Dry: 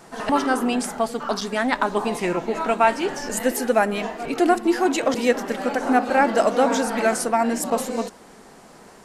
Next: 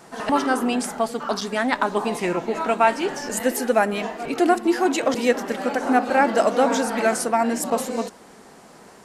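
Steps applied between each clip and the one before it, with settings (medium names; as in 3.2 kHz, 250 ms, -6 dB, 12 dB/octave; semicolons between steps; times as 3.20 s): high-pass 62 Hz 6 dB/octave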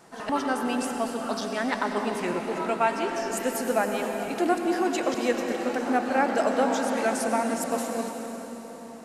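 reverberation RT60 4.5 s, pre-delay 86 ms, DRR 4 dB; trim -6.5 dB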